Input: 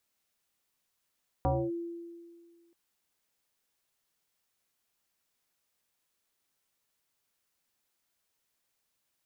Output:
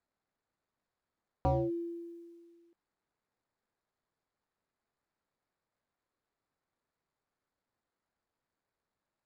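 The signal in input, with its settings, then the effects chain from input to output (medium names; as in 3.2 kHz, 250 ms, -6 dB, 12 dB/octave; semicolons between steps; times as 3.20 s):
FM tone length 1.28 s, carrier 340 Hz, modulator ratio 0.61, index 2.9, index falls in 0.26 s linear, decay 1.88 s, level -23 dB
median filter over 15 samples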